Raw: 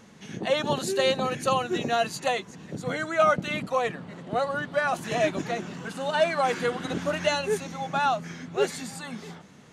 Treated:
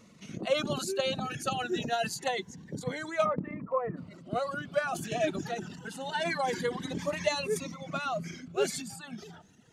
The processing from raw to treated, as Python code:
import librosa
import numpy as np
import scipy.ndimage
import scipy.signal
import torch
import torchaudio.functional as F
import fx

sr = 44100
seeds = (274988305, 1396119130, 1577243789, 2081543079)

y = fx.dereverb_blind(x, sr, rt60_s=1.1)
y = fx.steep_lowpass(y, sr, hz=1600.0, slope=36, at=(3.24, 3.96), fade=0.02)
y = fx.transient(y, sr, attack_db=4, sustain_db=8)
y = fx.notch_cascade(y, sr, direction='rising', hz=0.26)
y = y * 10.0 ** (-5.0 / 20.0)